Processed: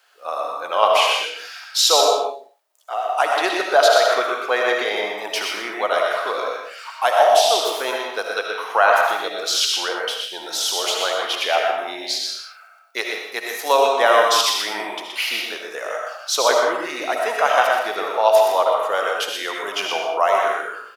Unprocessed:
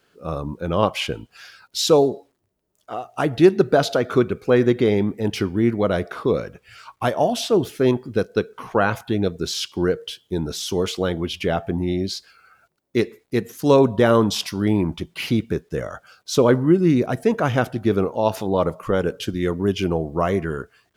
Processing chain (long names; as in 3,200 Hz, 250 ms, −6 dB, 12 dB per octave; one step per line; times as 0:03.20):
Chebyshev high-pass filter 710 Hz, order 3
loudspeakers that aren't time-aligned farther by 42 metres −6 dB, 56 metres −12 dB
convolution reverb, pre-delay 35 ms, DRR 1 dB
level +6 dB